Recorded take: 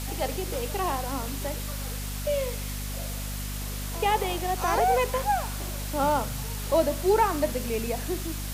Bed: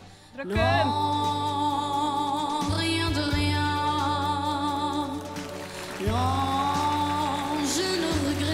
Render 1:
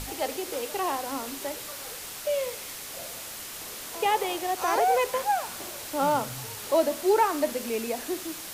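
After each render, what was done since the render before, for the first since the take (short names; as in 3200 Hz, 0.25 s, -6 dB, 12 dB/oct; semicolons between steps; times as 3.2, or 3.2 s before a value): notches 50/100/150/200/250 Hz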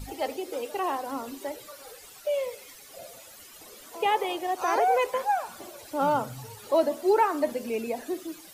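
denoiser 14 dB, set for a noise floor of -39 dBFS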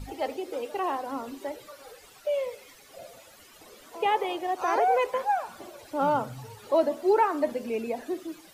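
high shelf 5100 Hz -9 dB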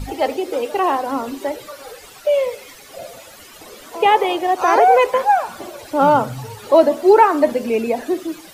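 gain +11.5 dB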